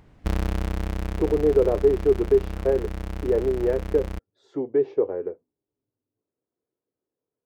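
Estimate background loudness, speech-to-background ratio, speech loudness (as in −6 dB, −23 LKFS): −32.0 LKFS, 8.5 dB, −23.5 LKFS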